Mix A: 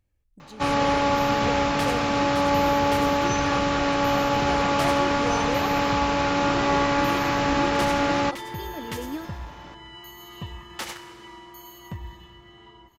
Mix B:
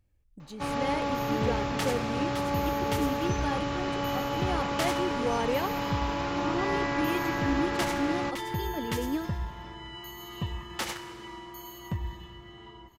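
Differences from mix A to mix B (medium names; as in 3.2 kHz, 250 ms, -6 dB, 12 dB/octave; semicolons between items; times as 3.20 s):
first sound -10.0 dB; master: add bass shelf 420 Hz +3.5 dB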